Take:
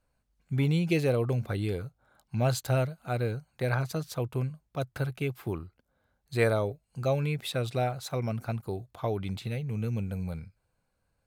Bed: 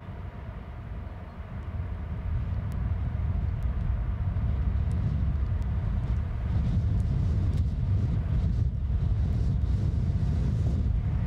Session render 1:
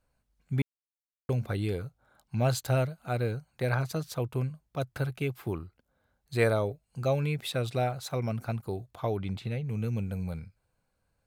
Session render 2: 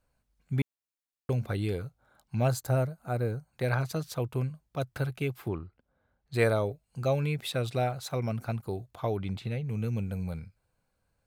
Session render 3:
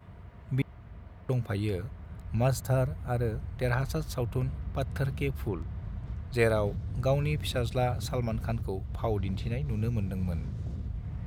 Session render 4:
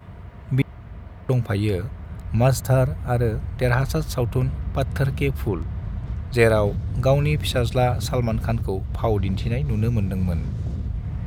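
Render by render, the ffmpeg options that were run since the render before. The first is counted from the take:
-filter_complex "[0:a]asettb=1/sr,asplit=3[s0][s1][s2];[s0]atrim=end=9.174[s3];[s1]atrim=start=9.17:end=9.65,asetpts=PTS-STARTPTS,afade=t=in:d=0.004:c=qsin,afade=t=out:st=0.476:d=0.004:c=qsin,aemphasis=mode=reproduction:type=cd[s4];[s2]atrim=start=9.646[s5];[s3][s4]acrossfade=d=0.004:c1=hsin:c2=qsin[s6];[s6][s5]acrossfade=d=0.004:c1=qsin:c2=hsin,asplit=3[s7][s8][s9];[s7]atrim=end=0.62,asetpts=PTS-STARTPTS,afade=t=out:st=0.616:d=0.004:c=hsin[s10];[s8]atrim=start=0.62:end=1.29,asetpts=PTS-STARTPTS,volume=0[s11];[s9]atrim=start=1.29,asetpts=PTS-STARTPTS,afade=t=in:d=0.004:c=hsin[s12];[s10][s11][s12]concat=n=3:v=0:a=1"
-filter_complex "[0:a]asettb=1/sr,asplit=3[s0][s1][s2];[s0]atrim=end=2.484[s3];[s1]atrim=start=2.48:end=3.53,asetpts=PTS-STARTPTS,afade=t=in:d=0.004:c=qsin,afade=t=out:st=1.046:d=0.004:c=qsin,equalizer=f=3100:w=1.1:g=-11[s4];[s2]atrim=start=3.526[s5];[s3][s4]acrossfade=d=0.004:c1=hsin:c2=qsin[s6];[s6][s5]acrossfade=d=0.004:c1=qsin:c2=hsin,asettb=1/sr,asplit=3[s7][s8][s9];[s7]atrim=end=5.484[s10];[s8]atrim=start=5.48:end=6.34,asetpts=PTS-STARTPTS,afade=t=in:d=0.004:c=qsin,afade=t=out:st=0.856:d=0.004:c=qsin,adynamicsmooth=sensitivity=3:basefreq=3600[s11];[s9]atrim=start=6.336[s12];[s10][s11]acrossfade=d=0.004:c1=hsin:c2=qsin[s13];[s13][s12]acrossfade=d=0.004:c1=qsin:c2=hsin"
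-filter_complex "[1:a]volume=0.335[s0];[0:a][s0]amix=inputs=2:normalize=0"
-af "volume=2.66"

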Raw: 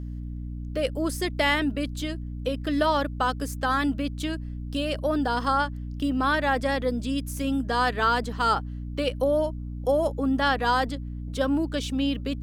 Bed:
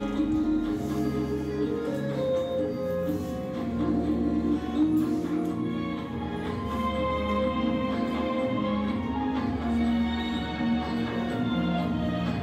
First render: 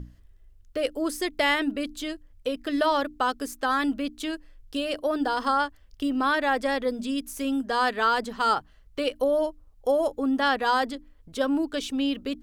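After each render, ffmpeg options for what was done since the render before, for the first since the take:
-af "bandreject=f=60:t=h:w=6,bandreject=f=120:t=h:w=6,bandreject=f=180:t=h:w=6,bandreject=f=240:t=h:w=6,bandreject=f=300:t=h:w=6"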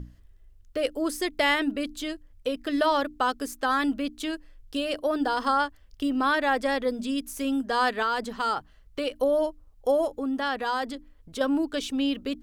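-filter_complex "[0:a]asettb=1/sr,asplit=3[s0][s1][s2];[s0]atrim=end=8.024[s3];[s1]atrim=start=8.02:end=9.17,asetpts=PTS-STARTPTS,afade=t=in:d=0.004:c=qsin,afade=t=out:st=1.146:d=0.004:c=qsin,acompressor=threshold=0.0562:ratio=2:attack=3.2:release=140:knee=1:detection=peak[s4];[s2]atrim=start=9.166[s5];[s3][s4]acrossfade=d=0.004:c1=hsin:c2=qsin[s6];[s6][s5]acrossfade=d=0.004:c1=qsin:c2=hsin,asettb=1/sr,asplit=3[s7][s8][s9];[s7]atrim=end=10.054[s10];[s8]atrim=start=10.05:end=11.41,asetpts=PTS-STARTPTS,afade=t=in:d=0.004:c=qsin,afade=t=out:st=1.356:d=0.004:c=qsin,acompressor=threshold=0.0251:ratio=1.5:attack=3.2:release=140:knee=1:detection=peak[s11];[s9]atrim=start=11.406[s12];[s10][s11]acrossfade=d=0.004:c1=hsin:c2=qsin[s13];[s13][s12]acrossfade=d=0.004:c1=qsin:c2=hsin"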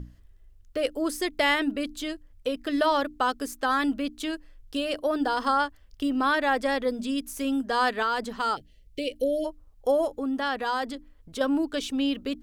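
-filter_complex "[0:a]asplit=3[s0][s1][s2];[s0]afade=t=out:st=8.55:d=0.02[s3];[s1]asuperstop=centerf=1100:order=8:qfactor=0.73,afade=t=in:st=8.55:d=0.02,afade=t=out:st=9.44:d=0.02[s4];[s2]afade=t=in:st=9.44:d=0.02[s5];[s3][s4][s5]amix=inputs=3:normalize=0"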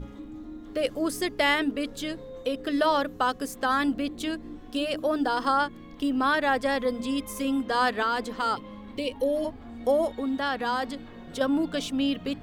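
-filter_complex "[1:a]volume=0.168[s0];[0:a][s0]amix=inputs=2:normalize=0"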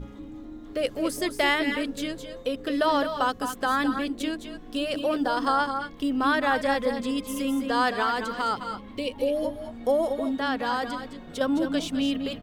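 -af "aecho=1:1:208|219:0.282|0.282"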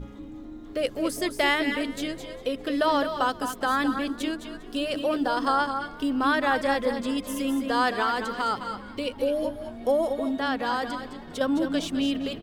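-filter_complex "[0:a]asplit=4[s0][s1][s2][s3];[s1]adelay=402,afreqshift=66,volume=0.0794[s4];[s2]adelay=804,afreqshift=132,volume=0.0398[s5];[s3]adelay=1206,afreqshift=198,volume=0.02[s6];[s0][s4][s5][s6]amix=inputs=4:normalize=0"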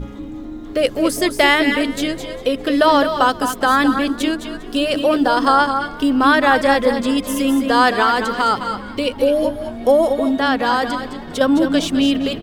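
-af "volume=3.16,alimiter=limit=0.891:level=0:latency=1"

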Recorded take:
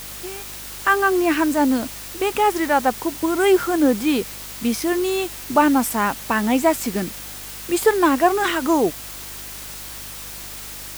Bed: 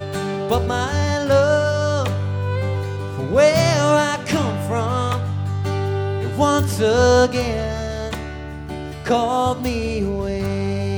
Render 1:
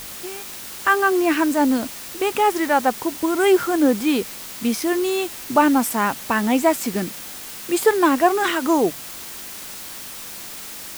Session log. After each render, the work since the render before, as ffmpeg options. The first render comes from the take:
-af "bandreject=f=50:t=h:w=4,bandreject=f=100:t=h:w=4,bandreject=f=150:t=h:w=4"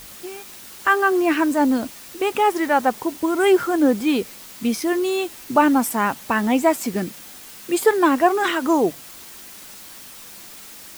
-af "afftdn=nr=6:nf=-35"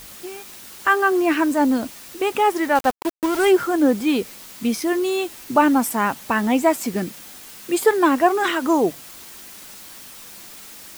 -filter_complex "[0:a]asettb=1/sr,asplit=3[s0][s1][s2];[s0]atrim=end=2.754[s3];[s1]atrim=start=2.75:end=3.51,asetpts=PTS-STARTPTS,afade=t=in:d=0.004:c=qsin,afade=t=out:st=0.756:d=0.004:c=qsin,aeval=exprs='val(0)*gte(abs(val(0)),0.0596)':c=same[s4];[s2]atrim=start=3.506[s5];[s3][s4]acrossfade=d=0.004:c1=hsin:c2=qsin[s6];[s6][s5]acrossfade=d=0.004:c1=qsin:c2=hsin"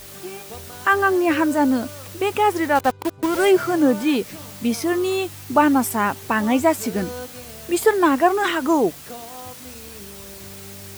-filter_complex "[1:a]volume=0.106[s0];[0:a][s0]amix=inputs=2:normalize=0"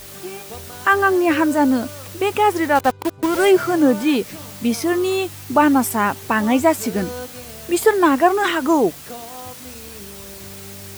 -af "volume=1.26,alimiter=limit=0.794:level=0:latency=1"

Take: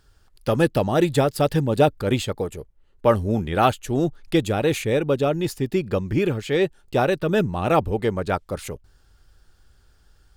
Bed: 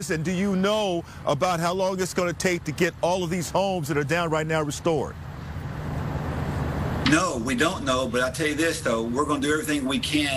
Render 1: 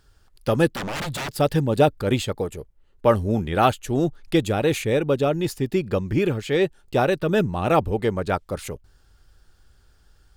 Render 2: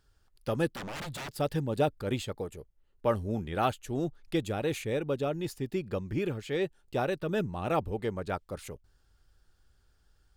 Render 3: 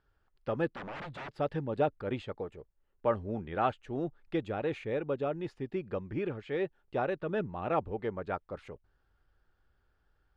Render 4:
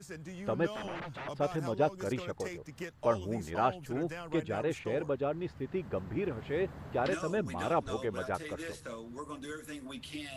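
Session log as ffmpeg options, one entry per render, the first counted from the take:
-filter_complex "[0:a]asettb=1/sr,asplit=3[s0][s1][s2];[s0]atrim=end=0.724[s3];[s1]atrim=start=0.72:end=1.4,asetpts=PTS-STARTPTS,afade=t=in:d=0.004:c=qsin,afade=t=out:st=0.676:d=0.004:c=qsin,aeval=exprs='0.0631*(abs(mod(val(0)/0.0631+3,4)-2)-1)':c=same[s4];[s2]atrim=start=1.396[s5];[s3][s4]acrossfade=d=0.004:c1=hsin:c2=qsin[s6];[s6][s5]acrossfade=d=0.004:c1=qsin:c2=hsin"
-af "volume=0.316"
-af "lowpass=2100,lowshelf=f=250:g=-7"
-filter_complex "[1:a]volume=0.112[s0];[0:a][s0]amix=inputs=2:normalize=0"

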